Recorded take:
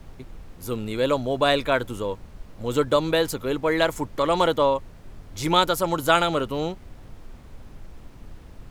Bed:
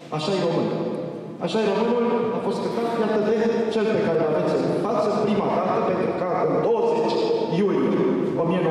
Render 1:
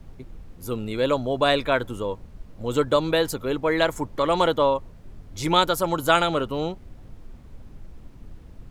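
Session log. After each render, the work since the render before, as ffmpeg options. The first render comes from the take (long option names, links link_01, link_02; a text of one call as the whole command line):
ffmpeg -i in.wav -af "afftdn=noise_reduction=6:noise_floor=-46" out.wav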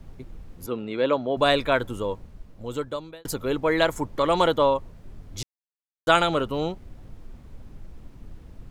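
ffmpeg -i in.wav -filter_complex "[0:a]asettb=1/sr,asplit=3[link_01][link_02][link_03];[link_01]atrim=end=0.664[link_04];[link_02]atrim=start=0.66:end=1.37,asetpts=PTS-STARTPTS,afade=type=in:duration=0.004:curve=qsin,afade=type=out:start_time=0.706:duration=0.004:curve=qsin,highpass=190,lowpass=3300[link_05];[link_03]atrim=start=1.366[link_06];[link_04][link_05]acrossfade=duration=0.004:curve1=hsin:curve2=qsin[link_07];[link_07][link_06]acrossfade=duration=0.004:curve1=qsin:curve2=hsin,asplit=4[link_08][link_09][link_10][link_11];[link_08]atrim=end=3.25,asetpts=PTS-STARTPTS,afade=type=out:start_time=2.13:duration=1.12[link_12];[link_09]atrim=start=3.25:end=5.43,asetpts=PTS-STARTPTS,afade=type=in:duration=0.004:curve=hsin,afade=type=out:start_time=2.176:duration=0.004:curve=hsin[link_13];[link_10]atrim=start=5.43:end=6.07,asetpts=PTS-STARTPTS,volume=0[link_14];[link_11]atrim=start=6.07,asetpts=PTS-STARTPTS,afade=type=in:duration=0.004:curve=hsin[link_15];[link_12][link_13][link_14][link_15]concat=n=4:v=0:a=1" out.wav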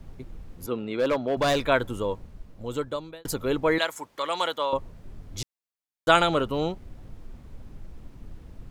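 ffmpeg -i in.wav -filter_complex "[0:a]asettb=1/sr,asplit=3[link_01][link_02][link_03];[link_01]atrim=end=0.844[link_04];[link_02]atrim=start=0.84:end=1.63,asetpts=PTS-STARTPTS,afade=type=in:duration=0.004:curve=qsin,afade=type=out:start_time=0.786:duration=0.004:curve=qsin,asoftclip=type=hard:threshold=-19dB[link_05];[link_03]atrim=start=1.626[link_06];[link_04][link_05]acrossfade=duration=0.004:curve1=hsin:curve2=qsin[link_07];[link_07][link_06]acrossfade=duration=0.004:curve1=qsin:curve2=hsin,asettb=1/sr,asplit=3[link_08][link_09][link_10];[link_08]atrim=end=3.784[link_11];[link_09]atrim=start=3.78:end=4.73,asetpts=PTS-STARTPTS,afade=type=in:duration=0.004:curve=qsin,afade=type=out:start_time=0.946:duration=0.004:curve=qsin,highpass=frequency=1500:poles=1[link_12];[link_10]atrim=start=4.726[link_13];[link_11][link_12]acrossfade=duration=0.004:curve1=hsin:curve2=qsin[link_14];[link_14][link_13]acrossfade=duration=0.004:curve1=qsin:curve2=hsin" out.wav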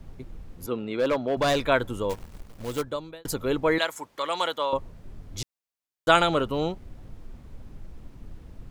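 ffmpeg -i in.wav -filter_complex "[0:a]asplit=3[link_01][link_02][link_03];[link_01]afade=type=out:start_time=2.09:duration=0.02[link_04];[link_02]acrusher=bits=2:mode=log:mix=0:aa=0.000001,afade=type=in:start_time=2.09:duration=0.02,afade=type=out:start_time=2.81:duration=0.02[link_05];[link_03]afade=type=in:start_time=2.81:duration=0.02[link_06];[link_04][link_05][link_06]amix=inputs=3:normalize=0" out.wav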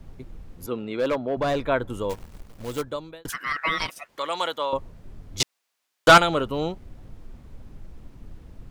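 ffmpeg -i in.wav -filter_complex "[0:a]asettb=1/sr,asplit=3[link_01][link_02][link_03];[link_01]atrim=end=1.154[link_04];[link_02]atrim=start=1.15:end=1.9,asetpts=PTS-STARTPTS,afade=type=in:duration=0.004:curve=qsin,afade=type=out:start_time=0.746:duration=0.004:curve=qsin,highshelf=frequency=2500:gain=-11[link_05];[link_03]atrim=start=1.896[link_06];[link_04][link_05]acrossfade=duration=0.004:curve1=hsin:curve2=qsin[link_07];[link_07][link_06]acrossfade=duration=0.004:curve1=qsin:curve2=hsin,asettb=1/sr,asplit=3[link_08][link_09][link_10];[link_08]atrim=end=3.294[link_11];[link_09]atrim=start=3.29:end=4.09,asetpts=PTS-STARTPTS,afade=type=in:duration=0.004:curve=qsin,afade=type=out:start_time=0.796:duration=0.004:curve=qsin,aeval=exprs='val(0)*sin(2*PI*1600*n/s)':channel_layout=same[link_12];[link_10]atrim=start=4.086[link_13];[link_11][link_12]acrossfade=duration=0.004:curve1=hsin:curve2=qsin[link_14];[link_14][link_13]acrossfade=duration=0.004:curve1=qsin:curve2=hsin,asettb=1/sr,asplit=3[link_15][link_16][link_17];[link_15]atrim=end=5.404[link_18];[link_16]atrim=start=5.4:end=6.18,asetpts=PTS-STARTPTS,afade=type=in:duration=0.004:curve=qsin,afade=type=out:start_time=0.776:duration=0.004:curve=qsin,asplit=2[link_19][link_20];[link_20]highpass=frequency=720:poles=1,volume=24dB,asoftclip=type=tanh:threshold=-3.5dB[link_21];[link_19][link_21]amix=inputs=2:normalize=0,lowpass=frequency=5100:poles=1,volume=-6dB[link_22];[link_17]atrim=start=6.176[link_23];[link_18][link_22]acrossfade=duration=0.004:curve1=hsin:curve2=qsin[link_24];[link_24][link_23]acrossfade=duration=0.004:curve1=qsin:curve2=hsin" out.wav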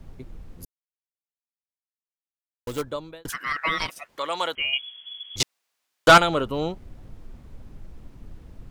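ffmpeg -i in.wav -filter_complex "[0:a]asettb=1/sr,asplit=3[link_01][link_02][link_03];[link_01]atrim=end=4.554[link_04];[link_02]atrim=start=4.55:end=5.36,asetpts=PTS-STARTPTS,afade=type=in:duration=0.004:curve=qsin,afade=type=out:start_time=0.806:duration=0.004:curve=qsin,lowpass=frequency=2900:width_type=q:width=0.5098,lowpass=frequency=2900:width_type=q:width=0.6013,lowpass=frequency=2900:width_type=q:width=0.9,lowpass=frequency=2900:width_type=q:width=2.563,afreqshift=-3400[link_05];[link_03]atrim=start=5.356[link_06];[link_04][link_05]acrossfade=duration=0.004:curve1=hsin:curve2=qsin[link_07];[link_07][link_06]acrossfade=duration=0.004:curve1=qsin:curve2=hsin,asplit=3[link_08][link_09][link_10];[link_08]atrim=end=0.65,asetpts=PTS-STARTPTS,afade=type=out:start_time=0.646:duration=0.004:curve=hsin[link_11];[link_09]atrim=start=0.65:end=2.67,asetpts=PTS-STARTPTS,volume=0[link_12];[link_10]atrim=start=2.67,asetpts=PTS-STARTPTS,afade=type=in:duration=0.004:curve=hsin[link_13];[link_11][link_12][link_13]concat=n=3:v=0:a=1" out.wav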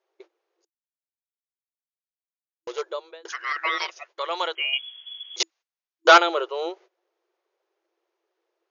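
ffmpeg -i in.wav -af "afftfilt=real='re*between(b*sr/4096,330,6900)':imag='im*between(b*sr/4096,330,6900)':win_size=4096:overlap=0.75,agate=range=-19dB:threshold=-47dB:ratio=16:detection=peak" out.wav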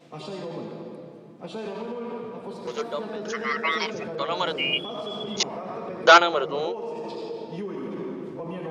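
ffmpeg -i in.wav -i bed.wav -filter_complex "[1:a]volume=-12.5dB[link_01];[0:a][link_01]amix=inputs=2:normalize=0" out.wav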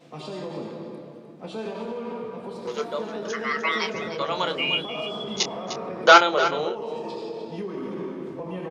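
ffmpeg -i in.wav -filter_complex "[0:a]asplit=2[link_01][link_02];[link_02]adelay=27,volume=-10dB[link_03];[link_01][link_03]amix=inputs=2:normalize=0,asplit=2[link_04][link_05];[link_05]aecho=0:1:303:0.266[link_06];[link_04][link_06]amix=inputs=2:normalize=0" out.wav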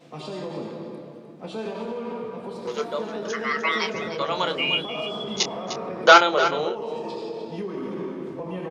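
ffmpeg -i in.wav -af "volume=1dB,alimiter=limit=-2dB:level=0:latency=1" out.wav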